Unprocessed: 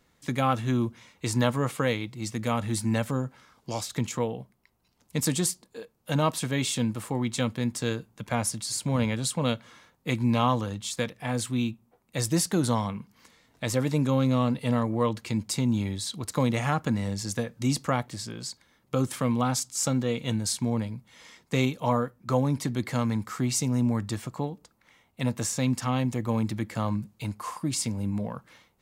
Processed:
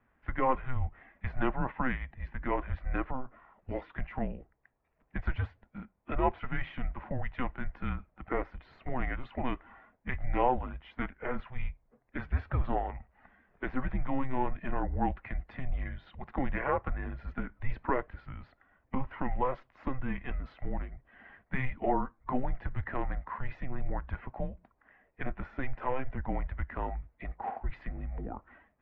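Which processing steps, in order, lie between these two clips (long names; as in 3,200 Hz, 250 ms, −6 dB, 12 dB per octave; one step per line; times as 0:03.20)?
spectral magnitudes quantised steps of 15 dB
single-sideband voice off tune −260 Hz 220–2,400 Hz
dynamic equaliser 230 Hz, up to −6 dB, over −42 dBFS, Q 1.2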